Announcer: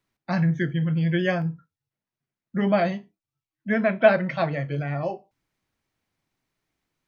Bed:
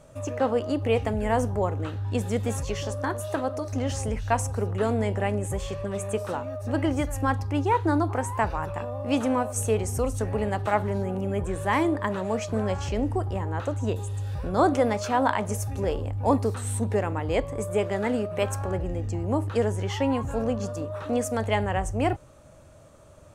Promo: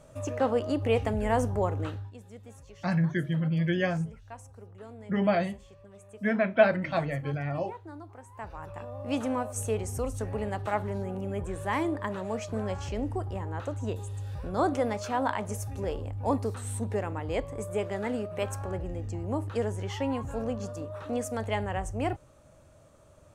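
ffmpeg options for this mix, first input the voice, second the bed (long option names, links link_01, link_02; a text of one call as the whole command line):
ffmpeg -i stem1.wav -i stem2.wav -filter_complex "[0:a]adelay=2550,volume=-4dB[link_01];[1:a]volume=13.5dB,afade=type=out:start_time=1.89:duration=0.23:silence=0.112202,afade=type=in:start_time=8.29:duration=0.8:silence=0.16788[link_02];[link_01][link_02]amix=inputs=2:normalize=0" out.wav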